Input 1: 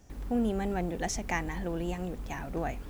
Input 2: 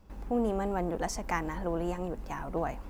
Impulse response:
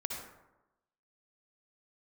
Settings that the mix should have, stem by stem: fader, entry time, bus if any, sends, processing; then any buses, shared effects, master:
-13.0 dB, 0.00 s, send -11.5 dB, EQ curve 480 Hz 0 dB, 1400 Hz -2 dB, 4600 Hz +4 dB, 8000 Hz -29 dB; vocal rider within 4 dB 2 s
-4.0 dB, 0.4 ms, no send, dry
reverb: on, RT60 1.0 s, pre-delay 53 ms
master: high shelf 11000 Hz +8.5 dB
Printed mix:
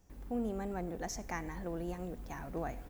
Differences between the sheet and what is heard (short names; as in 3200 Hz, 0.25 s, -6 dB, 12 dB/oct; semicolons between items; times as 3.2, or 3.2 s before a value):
stem 1: missing EQ curve 480 Hz 0 dB, 1400 Hz -2 dB, 4600 Hz +4 dB, 8000 Hz -29 dB; stem 2 -4.0 dB -> -14.0 dB